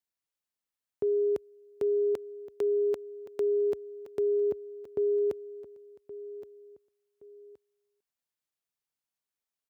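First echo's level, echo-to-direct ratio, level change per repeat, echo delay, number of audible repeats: -15.0 dB, -14.5 dB, -9.5 dB, 1121 ms, 2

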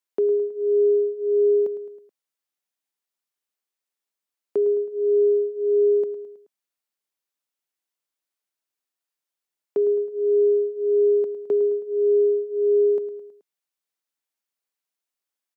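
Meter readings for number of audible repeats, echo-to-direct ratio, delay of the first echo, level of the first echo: 4, -11.5 dB, 107 ms, -13.0 dB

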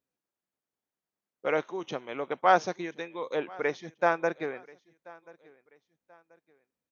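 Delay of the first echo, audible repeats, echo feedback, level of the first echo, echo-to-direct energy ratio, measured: 1034 ms, 2, 35%, -23.5 dB, -23.0 dB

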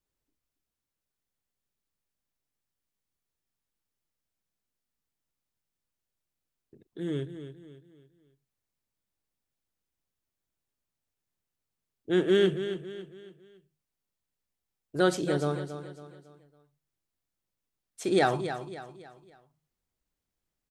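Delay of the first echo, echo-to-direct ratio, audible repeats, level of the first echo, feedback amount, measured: 277 ms, -9.5 dB, 4, -10.5 dB, 40%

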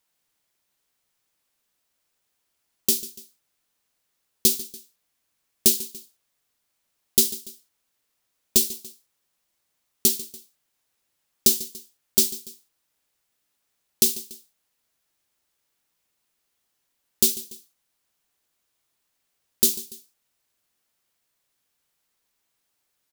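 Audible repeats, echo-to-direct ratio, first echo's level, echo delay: 2, -16.0 dB, -17.0 dB, 144 ms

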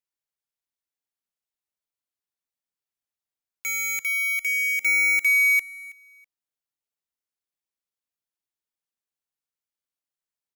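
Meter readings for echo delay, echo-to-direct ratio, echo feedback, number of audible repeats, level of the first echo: 325 ms, -21.0 dB, 23%, 2, -21.0 dB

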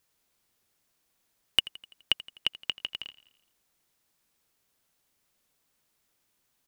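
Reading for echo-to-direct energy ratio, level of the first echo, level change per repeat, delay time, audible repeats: -17.5 dB, -19.0 dB, -5.0 dB, 84 ms, 4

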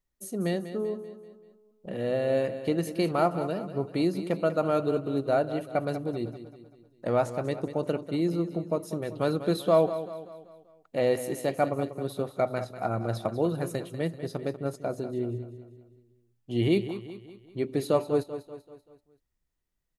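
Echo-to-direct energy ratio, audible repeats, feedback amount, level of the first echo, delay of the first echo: -11.0 dB, 4, 47%, -12.0 dB, 193 ms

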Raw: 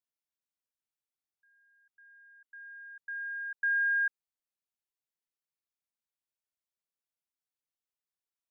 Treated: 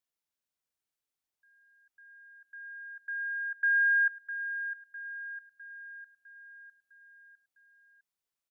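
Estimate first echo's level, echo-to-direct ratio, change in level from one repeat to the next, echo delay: -11.0 dB, -9.5 dB, -5.5 dB, 655 ms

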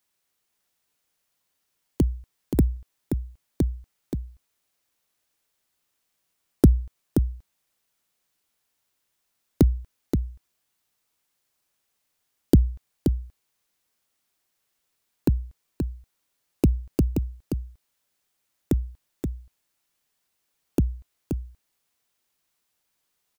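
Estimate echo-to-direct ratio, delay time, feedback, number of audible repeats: -6.5 dB, 527 ms, no regular repeats, 1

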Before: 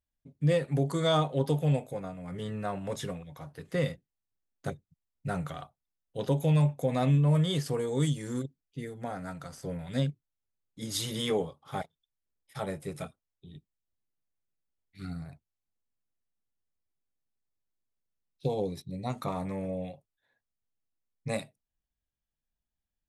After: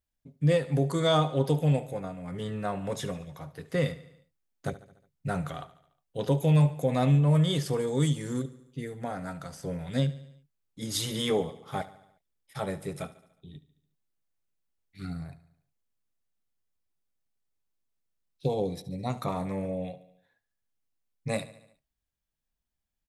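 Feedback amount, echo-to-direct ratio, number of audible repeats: 57%, -15.5 dB, 4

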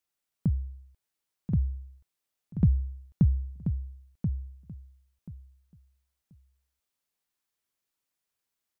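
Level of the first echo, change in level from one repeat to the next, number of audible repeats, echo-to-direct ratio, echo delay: -7.5 dB, -14.5 dB, 2, -7.5 dB, 1033 ms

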